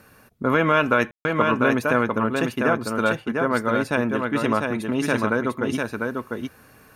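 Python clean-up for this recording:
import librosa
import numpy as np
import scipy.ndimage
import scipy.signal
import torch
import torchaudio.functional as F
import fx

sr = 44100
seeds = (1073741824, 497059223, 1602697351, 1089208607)

y = fx.fix_ambience(x, sr, seeds[0], print_start_s=0.0, print_end_s=0.5, start_s=1.11, end_s=1.25)
y = fx.fix_echo_inverse(y, sr, delay_ms=698, level_db=-4.0)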